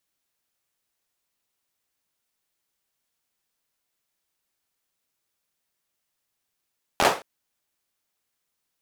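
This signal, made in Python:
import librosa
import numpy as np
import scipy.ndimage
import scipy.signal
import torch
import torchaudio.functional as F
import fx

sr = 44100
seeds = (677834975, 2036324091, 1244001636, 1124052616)

y = fx.drum_clap(sr, seeds[0], length_s=0.22, bursts=5, spacing_ms=12, hz=640.0, decay_s=0.32)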